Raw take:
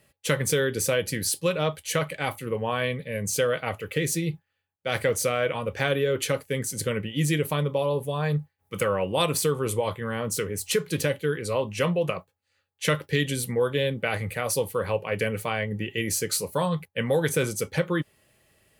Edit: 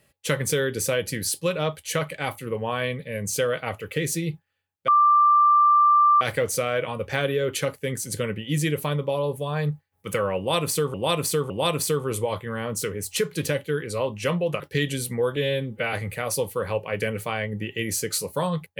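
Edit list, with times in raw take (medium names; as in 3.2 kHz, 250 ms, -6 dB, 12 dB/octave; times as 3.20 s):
4.88 s: add tone 1.18 kHz -13.5 dBFS 1.33 s
9.05–9.61 s: loop, 3 plays
12.15–12.98 s: delete
13.74–14.12 s: stretch 1.5×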